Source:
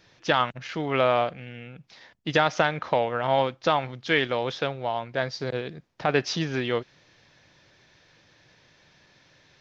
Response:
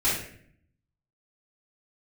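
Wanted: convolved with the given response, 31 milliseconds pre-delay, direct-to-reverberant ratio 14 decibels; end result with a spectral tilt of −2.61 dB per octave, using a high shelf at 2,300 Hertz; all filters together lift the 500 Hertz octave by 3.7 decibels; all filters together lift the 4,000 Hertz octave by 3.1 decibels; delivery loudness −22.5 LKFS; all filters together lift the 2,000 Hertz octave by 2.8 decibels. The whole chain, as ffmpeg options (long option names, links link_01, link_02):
-filter_complex "[0:a]equalizer=frequency=500:width_type=o:gain=4.5,equalizer=frequency=2000:width_type=o:gain=4,highshelf=frequency=2300:gain=-4,equalizer=frequency=4000:width_type=o:gain=6,asplit=2[link_01][link_02];[1:a]atrim=start_sample=2205,adelay=31[link_03];[link_02][link_03]afir=irnorm=-1:irlink=0,volume=-26.5dB[link_04];[link_01][link_04]amix=inputs=2:normalize=0,volume=0.5dB"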